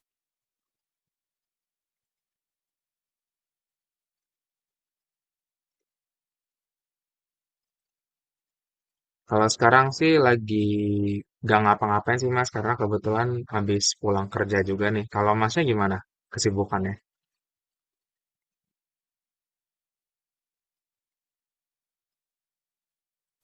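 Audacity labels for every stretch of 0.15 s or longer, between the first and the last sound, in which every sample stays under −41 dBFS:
11.210000	11.430000	silence
16.010000	16.320000	silence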